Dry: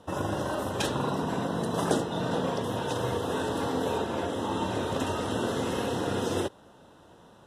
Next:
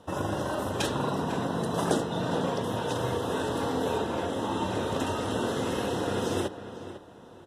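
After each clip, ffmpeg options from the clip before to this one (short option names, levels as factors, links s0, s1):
-filter_complex "[0:a]asplit=2[s0][s1];[s1]adelay=501,lowpass=f=3300:p=1,volume=0.251,asplit=2[s2][s3];[s3]adelay=501,lowpass=f=3300:p=1,volume=0.29,asplit=2[s4][s5];[s5]adelay=501,lowpass=f=3300:p=1,volume=0.29[s6];[s0][s2][s4][s6]amix=inputs=4:normalize=0"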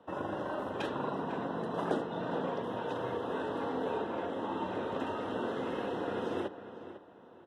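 -filter_complex "[0:a]acrossover=split=180 3100:gain=0.251 1 0.1[s0][s1][s2];[s0][s1][s2]amix=inputs=3:normalize=0,volume=0.562"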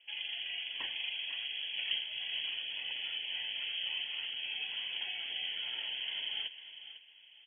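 -af "lowpass=f=3000:t=q:w=0.5098,lowpass=f=3000:t=q:w=0.6013,lowpass=f=3000:t=q:w=0.9,lowpass=f=3000:t=q:w=2.563,afreqshift=-3500,volume=0.668"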